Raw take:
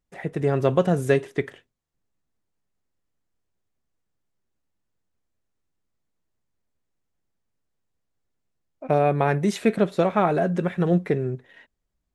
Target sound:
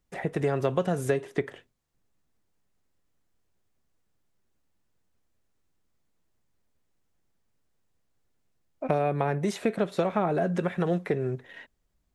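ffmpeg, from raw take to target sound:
-filter_complex "[0:a]acrossover=split=530|1100[s0][s1][s2];[s0]acompressor=threshold=0.0224:ratio=4[s3];[s1]acompressor=threshold=0.0178:ratio=4[s4];[s2]acompressor=threshold=0.00631:ratio=4[s5];[s3][s4][s5]amix=inputs=3:normalize=0,volume=1.68"

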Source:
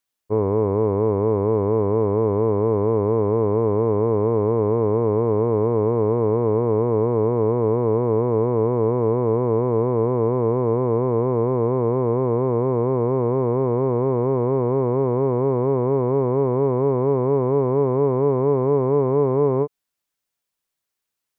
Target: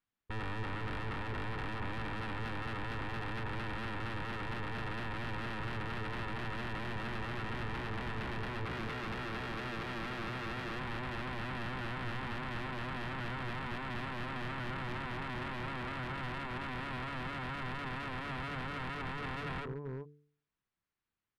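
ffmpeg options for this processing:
-filter_complex "[0:a]asplit=3[s0][s1][s2];[s0]afade=t=out:st=8.64:d=0.02[s3];[s1]asubboost=boost=4:cutoff=52,afade=t=in:st=8.64:d=0.02,afade=t=out:st=10.77:d=0.02[s4];[s2]afade=t=in:st=10.77:d=0.02[s5];[s3][s4][s5]amix=inputs=3:normalize=0,alimiter=limit=0.133:level=0:latency=1:release=293,asplit=2[s6][s7];[s7]adelay=384.8,volume=0.224,highshelf=f=4000:g=-8.66[s8];[s6][s8]amix=inputs=2:normalize=0,asoftclip=type=tanh:threshold=0.0631,bandreject=f=73.33:t=h:w=4,bandreject=f=146.66:t=h:w=4,bandreject=f=219.99:t=h:w=4,bandreject=f=293.32:t=h:w=4,bandreject=f=366.65:t=h:w=4,bandreject=f=439.98:t=h:w=4,aeval=exprs='0.0211*(abs(mod(val(0)/0.0211+3,4)-2)-1)':c=same,equalizer=f=580:t=o:w=1.7:g=-11.5,adynamicsmooth=sensitivity=7:basefreq=1700,volume=1.78"

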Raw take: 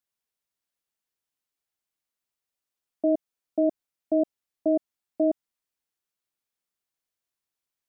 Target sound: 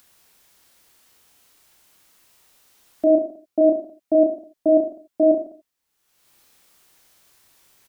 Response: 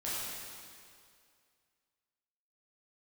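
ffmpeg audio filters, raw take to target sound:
-filter_complex "[0:a]aecho=1:1:30|64.5|104.2|149.8|202.3:0.631|0.398|0.251|0.158|0.1,acompressor=mode=upward:threshold=0.00631:ratio=2.5,asplit=2[s0][s1];[1:a]atrim=start_sample=2205,atrim=end_sample=4410[s2];[s1][s2]afir=irnorm=-1:irlink=0,volume=0.398[s3];[s0][s3]amix=inputs=2:normalize=0,volume=1.41"

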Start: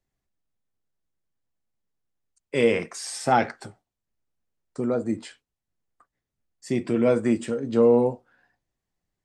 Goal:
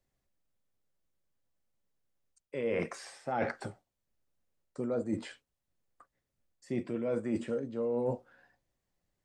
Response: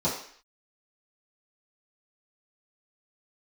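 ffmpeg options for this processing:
-filter_complex "[0:a]acrossover=split=2800[s0][s1];[s1]acompressor=threshold=0.00316:ratio=4:attack=1:release=60[s2];[s0][s2]amix=inputs=2:normalize=0,equalizer=f=550:w=6.1:g=6.5,areverse,acompressor=threshold=0.0355:ratio=16,areverse"

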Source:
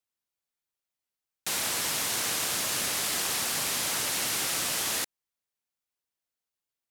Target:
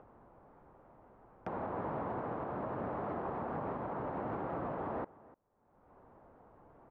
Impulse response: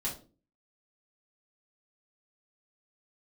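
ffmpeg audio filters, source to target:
-filter_complex "[0:a]lowpass=f=1000:w=0.5412,lowpass=f=1000:w=1.3066,acompressor=mode=upward:threshold=0.00794:ratio=2.5,alimiter=level_in=5.01:limit=0.0631:level=0:latency=1:release=305,volume=0.2,asplit=2[s0][s1];[s1]adelay=297.4,volume=0.1,highshelf=f=4000:g=-6.69[s2];[s0][s2]amix=inputs=2:normalize=0,volume=2.66"

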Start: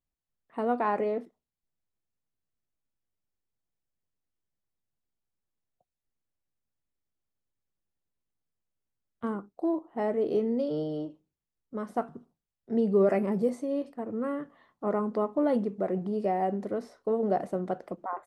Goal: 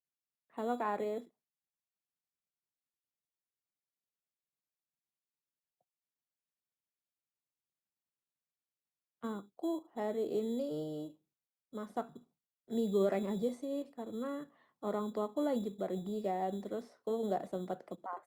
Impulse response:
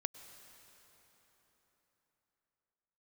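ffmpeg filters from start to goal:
-filter_complex "[0:a]highpass=f=110:w=0.5412,highpass=f=110:w=1.3066,acrossover=split=290|1400[s0][s1][s2];[s0]acrusher=samples=12:mix=1:aa=0.000001[s3];[s3][s1][s2]amix=inputs=3:normalize=0,volume=0.422" -ar 48000 -c:a libopus -b:a 64k

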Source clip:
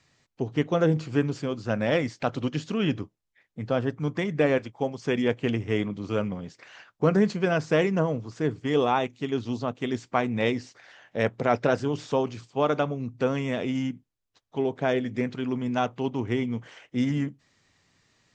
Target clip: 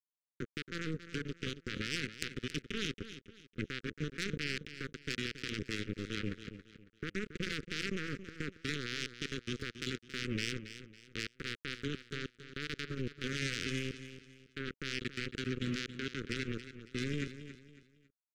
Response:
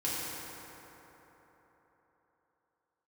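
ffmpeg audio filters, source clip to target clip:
-af "highpass=94,bass=f=250:g=9,treble=f=4000:g=-8,bandreject=f=60:t=h:w=6,bandreject=f=120:t=h:w=6,bandreject=f=180:t=h:w=6,acompressor=threshold=0.0447:ratio=6,alimiter=level_in=1.19:limit=0.0631:level=0:latency=1:release=16,volume=0.841,crystalizer=i=2:c=0,acrusher=bits=3:mix=0:aa=0.5,asuperstop=centerf=800:order=8:qfactor=0.85,aecho=1:1:276|552|828:0.251|0.0829|0.0274,volume=3.76"

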